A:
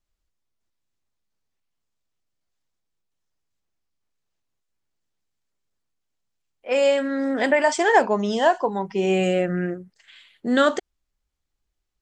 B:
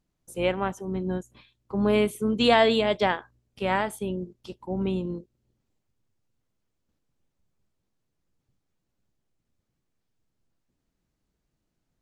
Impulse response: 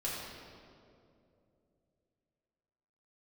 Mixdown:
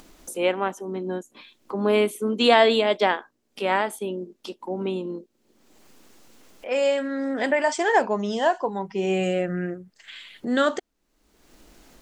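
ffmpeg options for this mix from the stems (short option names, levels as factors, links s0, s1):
-filter_complex "[0:a]volume=0.708[s0];[1:a]highpass=f=230:w=0.5412,highpass=f=230:w=1.3066,volume=1.41[s1];[s0][s1]amix=inputs=2:normalize=0,acompressor=mode=upward:threshold=0.0316:ratio=2.5"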